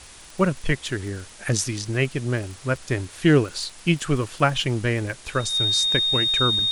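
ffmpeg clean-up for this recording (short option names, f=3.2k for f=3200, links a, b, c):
-af "adeclick=t=4,bandreject=f=3.7k:w=30,afwtdn=0.0071"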